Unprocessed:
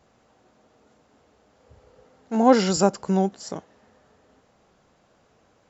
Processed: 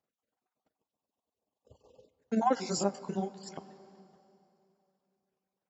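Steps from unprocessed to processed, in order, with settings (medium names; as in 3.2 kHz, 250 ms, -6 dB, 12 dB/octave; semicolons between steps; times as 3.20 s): random holes in the spectrogram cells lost 34%; reverb removal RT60 0.56 s; 0.76–2.07 s: spectral selection erased 1.2–2.5 kHz; gate -58 dBFS, range -23 dB; high-pass 150 Hz 6 dB/octave; compression, threshold -21 dBFS, peak gain reduction 10 dB; AM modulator 21 Hz, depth 45%; on a send at -14 dB: reverberation RT60 2.9 s, pre-delay 18 ms; 2.55–3.49 s: on the sum: detune thickener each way 27 cents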